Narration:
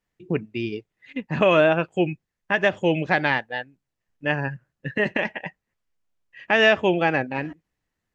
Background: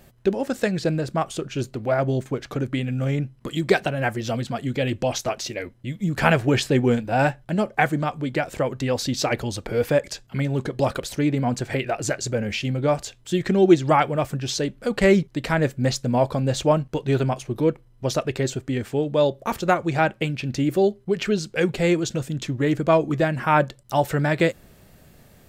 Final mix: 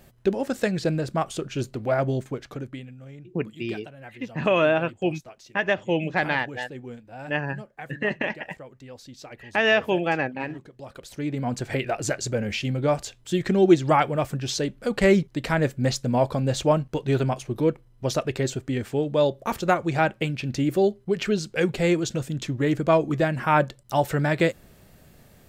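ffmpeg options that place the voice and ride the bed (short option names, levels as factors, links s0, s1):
-filter_complex "[0:a]adelay=3050,volume=0.708[s0];[1:a]volume=6.68,afade=t=out:st=2.01:d=0.95:silence=0.125893,afade=t=in:st=10.87:d=0.89:silence=0.125893[s1];[s0][s1]amix=inputs=2:normalize=0"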